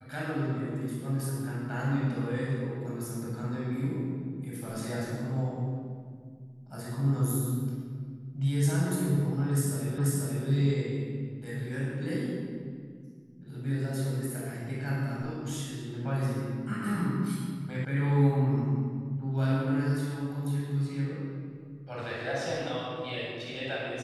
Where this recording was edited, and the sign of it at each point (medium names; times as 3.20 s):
9.98 s: repeat of the last 0.49 s
17.85 s: sound stops dead